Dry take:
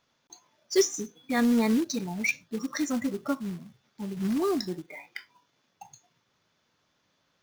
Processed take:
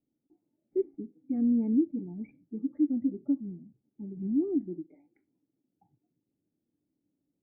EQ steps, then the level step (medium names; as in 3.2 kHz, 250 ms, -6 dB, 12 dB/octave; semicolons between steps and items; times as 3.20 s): cascade formant filter u; distance through air 330 m; static phaser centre 2.3 kHz, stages 4; +6.0 dB